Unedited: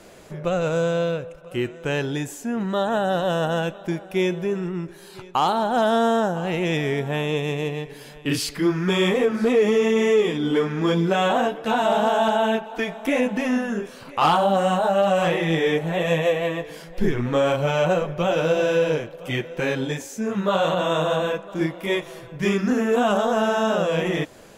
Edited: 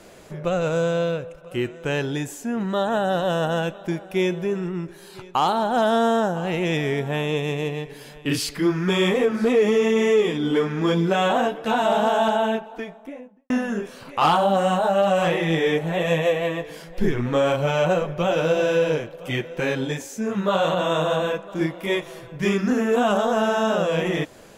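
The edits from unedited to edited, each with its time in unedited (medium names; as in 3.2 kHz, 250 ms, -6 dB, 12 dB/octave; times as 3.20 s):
12.19–13.50 s: studio fade out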